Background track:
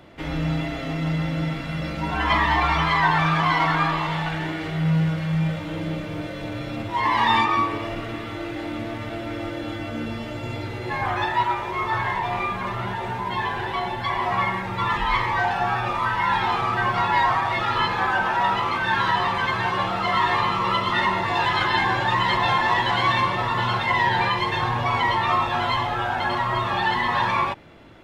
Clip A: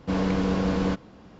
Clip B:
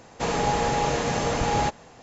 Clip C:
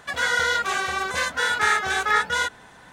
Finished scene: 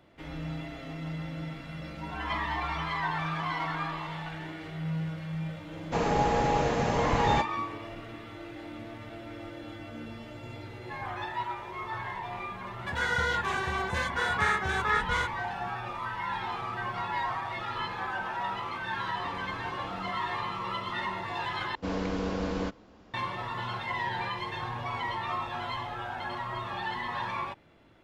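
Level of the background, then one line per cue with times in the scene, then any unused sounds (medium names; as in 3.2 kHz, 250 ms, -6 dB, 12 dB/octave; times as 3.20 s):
background track -12 dB
5.72 s: add B -1.5 dB + low-pass 2.3 kHz 6 dB/octave
12.79 s: add C -6.5 dB + tone controls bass +14 dB, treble -8 dB
19.16 s: add A -12 dB + compression 1.5:1, threshold -43 dBFS
21.75 s: replace with A -4.5 dB + peaking EQ 150 Hz -9.5 dB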